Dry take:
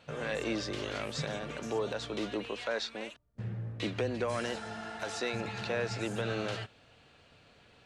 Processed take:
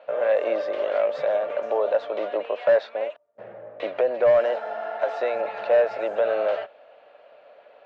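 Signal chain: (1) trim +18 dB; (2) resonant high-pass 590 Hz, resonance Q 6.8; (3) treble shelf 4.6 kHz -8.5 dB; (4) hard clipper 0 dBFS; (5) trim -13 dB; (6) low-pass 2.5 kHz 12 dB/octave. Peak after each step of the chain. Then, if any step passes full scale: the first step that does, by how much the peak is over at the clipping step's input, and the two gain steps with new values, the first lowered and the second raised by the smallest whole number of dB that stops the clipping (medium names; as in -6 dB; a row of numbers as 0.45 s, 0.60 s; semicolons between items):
-3.5 dBFS, +6.0 dBFS, +6.0 dBFS, 0.0 dBFS, -13.0 dBFS, -12.5 dBFS; step 2, 6.0 dB; step 1 +12 dB, step 5 -7 dB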